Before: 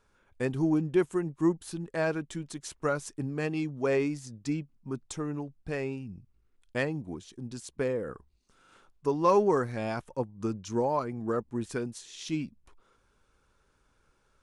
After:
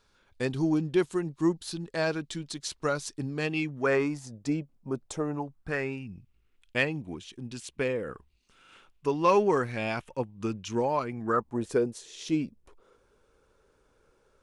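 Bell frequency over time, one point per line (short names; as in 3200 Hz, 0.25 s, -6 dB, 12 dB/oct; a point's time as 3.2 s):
bell +11 dB 1 oct
3.35 s 4200 Hz
4.38 s 580 Hz
5.18 s 580 Hz
6.11 s 2700 Hz
11.11 s 2700 Hz
11.68 s 460 Hz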